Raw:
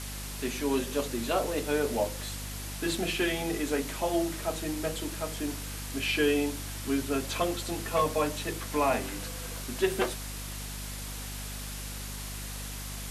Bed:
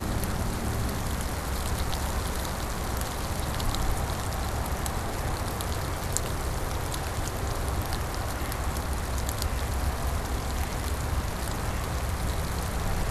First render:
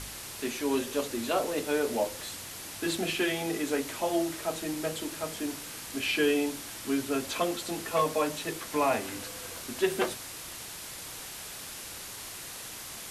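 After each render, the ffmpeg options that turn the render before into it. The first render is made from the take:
-af "bandreject=f=50:t=h:w=4,bandreject=f=100:t=h:w=4,bandreject=f=150:t=h:w=4,bandreject=f=200:t=h:w=4,bandreject=f=250:t=h:w=4"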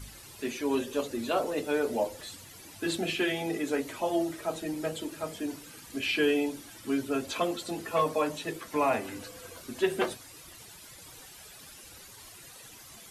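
-af "afftdn=nr=12:nf=-42"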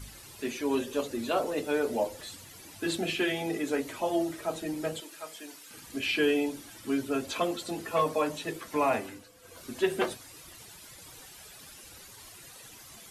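-filter_complex "[0:a]asettb=1/sr,asplit=3[a][b][c];[a]atrim=end=5.004[d];[b]atrim=start=5:end=5.71,asetpts=PTS-STARTPTS,afade=t=in:d=0.004:c=qsin,afade=t=out:st=0.706:d=0.004:c=qsin,highpass=f=1.4k:p=1[e];[c]atrim=start=5.706[f];[d][e]acrossfade=d=0.004:c1=hsin:c2=qsin[g];[g][f]acrossfade=d=0.004:c1=qsin:c2=hsin,asplit=3[h][i][j];[h]atrim=end=9.24,asetpts=PTS-STARTPTS,afade=t=out:st=8.98:d=0.26:silence=0.281838[k];[i]atrim=start=9.24:end=9.4,asetpts=PTS-STARTPTS,volume=-11dB[l];[j]atrim=start=9.4,asetpts=PTS-STARTPTS,afade=t=in:d=0.26:silence=0.281838[m];[k][l][m]concat=n=3:v=0:a=1"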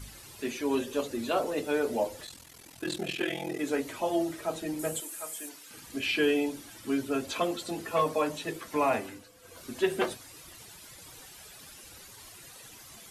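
-filter_complex "[0:a]asettb=1/sr,asplit=3[a][b][c];[a]atrim=end=2.254[d];[b]atrim=start=2.25:end=3.59,asetpts=PTS-STARTPTS,afade=t=in:d=0.004:c=qsin,afade=t=out:st=1.336:d=0.004:c=qsin,aeval=exprs='val(0)*sin(2*PI*21*n/s)':c=same[e];[c]atrim=start=3.586[f];[d][e]acrossfade=d=0.004:c1=hsin:c2=qsin[g];[g][f]acrossfade=d=0.004:c1=qsin:c2=hsin,asettb=1/sr,asplit=3[h][i][j];[h]atrim=end=4.794[k];[i]atrim=start=4.79:end=5.49,asetpts=PTS-STARTPTS,afade=t=in:d=0.004:c=qsin,afade=t=out:st=0.696:d=0.004:c=qsin,highshelf=f=6.4k:t=q:w=1.5:g=9.5[l];[j]atrim=start=5.486[m];[k][l]acrossfade=d=0.004:c1=hsin:c2=qsin[n];[n][m]acrossfade=d=0.004:c1=qsin:c2=hsin"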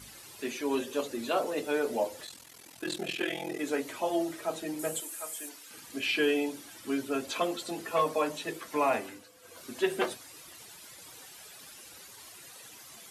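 -af "highpass=f=240:p=1"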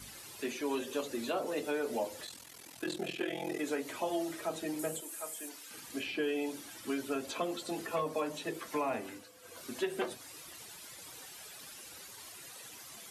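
-filter_complex "[0:a]acrossover=split=380|960[a][b][c];[a]acompressor=threshold=-38dB:ratio=4[d];[b]acompressor=threshold=-37dB:ratio=4[e];[c]acompressor=threshold=-41dB:ratio=4[f];[d][e][f]amix=inputs=3:normalize=0"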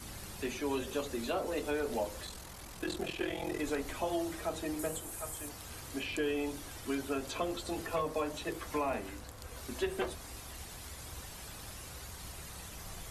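-filter_complex "[1:a]volume=-19.5dB[a];[0:a][a]amix=inputs=2:normalize=0"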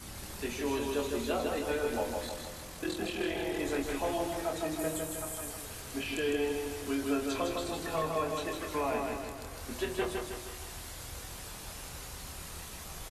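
-filter_complex "[0:a]asplit=2[a][b];[b]adelay=25,volume=-6.5dB[c];[a][c]amix=inputs=2:normalize=0,aecho=1:1:157|314|471|628|785|942|1099:0.631|0.328|0.171|0.0887|0.0461|0.024|0.0125"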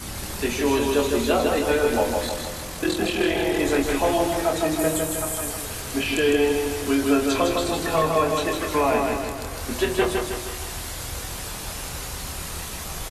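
-af "volume=11.5dB"

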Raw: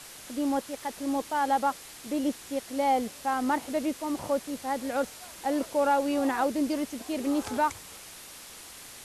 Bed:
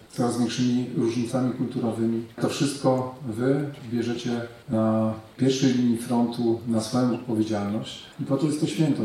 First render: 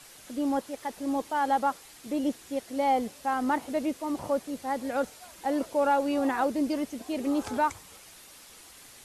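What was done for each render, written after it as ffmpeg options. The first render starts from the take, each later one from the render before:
-af "afftdn=nr=6:nf=-46"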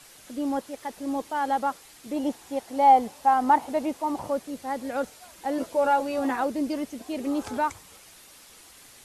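-filter_complex "[0:a]asettb=1/sr,asplit=3[a][b][c];[a]atrim=end=2.164[d];[b]atrim=start=2.16:end=4.22,asetpts=PTS-STARTPTS,afade=t=in:d=0.004:c=qsin,afade=t=out:st=2.056:d=0.004:c=qsin,equalizer=f=850:w=2.3:g=10.5[e];[c]atrim=start=4.216[f];[d][e]acrossfade=d=0.004:c1=hsin:c2=qsin[g];[g][f]acrossfade=d=0.004:c1=qsin:c2=hsin,asettb=1/sr,asplit=3[h][i][j];[h]atrim=end=5.574[k];[i]atrim=start=5.57:end=6.36,asetpts=PTS-STARTPTS,afade=t=in:d=0.004:c=qsin,afade=t=out:st=0.786:d=0.004:c=qsin,asplit=2[l][m];[m]adelay=12,volume=-5dB[n];[l][n]amix=inputs=2:normalize=0,atrim=end_sample=34839[o];[j]atrim=start=6.356[p];[k][o]acrossfade=d=0.004:c1=hsin:c2=qsin[q];[q][p]acrossfade=d=0.004:c1=qsin:c2=hsin"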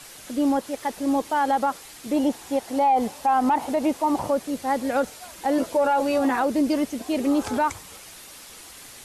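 -af "acontrast=81,alimiter=limit=-14dB:level=0:latency=1:release=66"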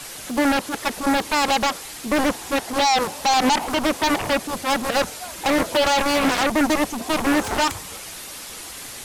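-af "aeval=exprs='0.211*(cos(1*acos(clip(val(0)/0.211,-1,1)))-cos(1*PI/2))+0.106*(cos(7*acos(clip(val(0)/0.211,-1,1)))-cos(7*PI/2))':c=same"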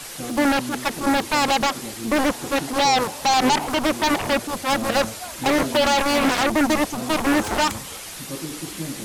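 -filter_complex "[1:a]volume=-9.5dB[a];[0:a][a]amix=inputs=2:normalize=0"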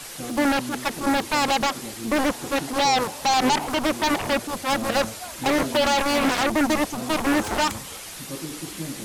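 -af "volume=-2dB"

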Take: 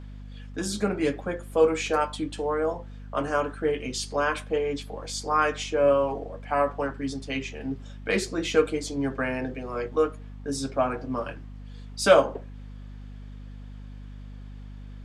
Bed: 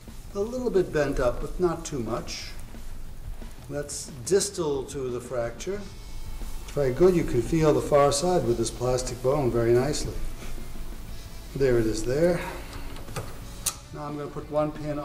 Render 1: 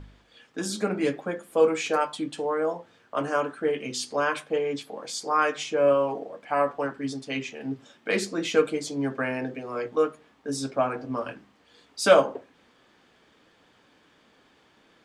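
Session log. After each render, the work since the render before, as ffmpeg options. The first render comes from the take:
-af "bandreject=f=50:t=h:w=4,bandreject=f=100:t=h:w=4,bandreject=f=150:t=h:w=4,bandreject=f=200:t=h:w=4,bandreject=f=250:t=h:w=4"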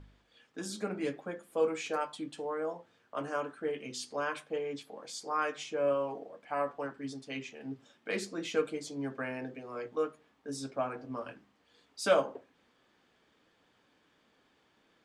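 -af "volume=-9dB"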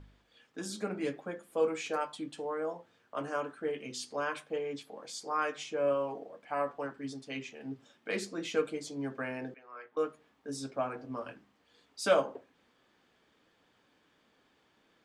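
-filter_complex "[0:a]asettb=1/sr,asplit=3[a][b][c];[a]atrim=end=9.544[d];[b]atrim=start=9.54:end=9.97,asetpts=PTS-STARTPTS,afade=t=in:d=0.004:c=qsin,afade=t=out:st=0.426:d=0.004:c=qsin,bandpass=f=1.5k:t=q:w=1.6[e];[c]atrim=start=9.966[f];[d][e]acrossfade=d=0.004:c1=hsin:c2=qsin[g];[g][f]acrossfade=d=0.004:c1=qsin:c2=hsin"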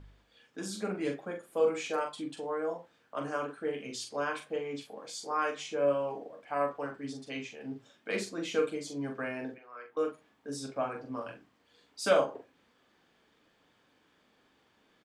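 -filter_complex "[0:a]asplit=2[a][b];[b]adelay=42,volume=-6dB[c];[a][c]amix=inputs=2:normalize=0"

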